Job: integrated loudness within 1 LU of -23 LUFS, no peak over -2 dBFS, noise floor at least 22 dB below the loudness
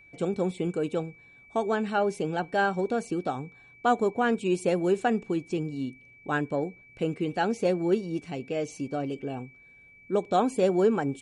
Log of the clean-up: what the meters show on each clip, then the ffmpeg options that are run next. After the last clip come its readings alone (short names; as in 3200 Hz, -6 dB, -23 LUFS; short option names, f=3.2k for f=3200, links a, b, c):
steady tone 2300 Hz; tone level -52 dBFS; loudness -28.5 LUFS; peak -11.5 dBFS; loudness target -23.0 LUFS
-> -af "bandreject=f=2.3k:w=30"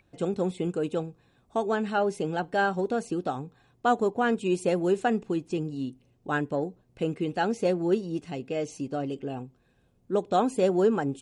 steady tone none; loudness -28.5 LUFS; peak -11.5 dBFS; loudness target -23.0 LUFS
-> -af "volume=5.5dB"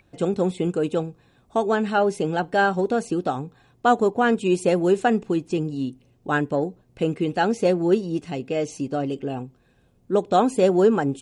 loudness -23.0 LUFS; peak -6.0 dBFS; noise floor -61 dBFS